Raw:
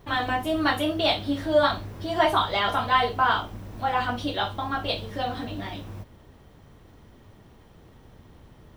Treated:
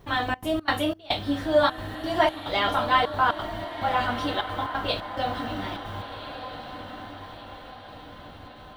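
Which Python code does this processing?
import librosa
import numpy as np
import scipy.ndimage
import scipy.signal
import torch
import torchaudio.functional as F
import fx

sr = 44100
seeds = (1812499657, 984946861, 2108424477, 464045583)

p1 = fx.step_gate(x, sr, bpm=177, pattern='xxxx.xx.xxx..xxx', floor_db=-24.0, edge_ms=4.5)
y = p1 + fx.echo_diffused(p1, sr, ms=1433, feedback_pct=50, wet_db=-10, dry=0)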